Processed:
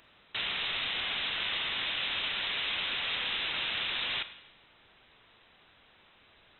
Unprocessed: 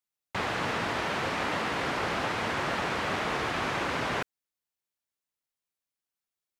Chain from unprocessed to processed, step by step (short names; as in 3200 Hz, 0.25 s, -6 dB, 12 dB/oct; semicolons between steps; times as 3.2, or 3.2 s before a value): zero-crossing step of -42.5 dBFS; inverted band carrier 3900 Hz; Schroeder reverb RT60 0.94 s, combs from 33 ms, DRR 12 dB; gain -4 dB